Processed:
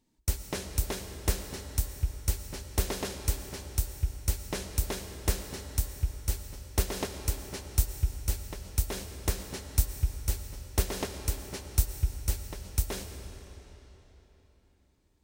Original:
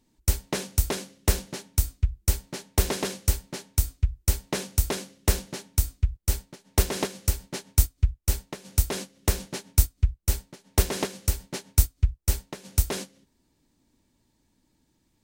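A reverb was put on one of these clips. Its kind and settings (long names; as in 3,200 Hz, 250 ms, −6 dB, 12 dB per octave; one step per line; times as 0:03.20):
comb and all-pass reverb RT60 3.9 s, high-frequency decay 0.85×, pre-delay 70 ms, DRR 7 dB
level −6 dB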